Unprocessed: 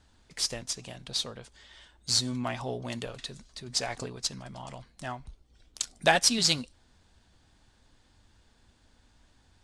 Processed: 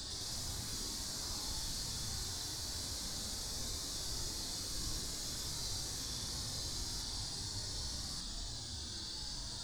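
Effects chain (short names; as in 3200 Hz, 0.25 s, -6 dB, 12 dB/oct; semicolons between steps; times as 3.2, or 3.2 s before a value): resonant high shelf 3400 Hz +9 dB, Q 3; Paulstretch 11×, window 0.05 s, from 7.49; echoes that change speed 0.104 s, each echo +3 st, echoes 3; gain +14.5 dB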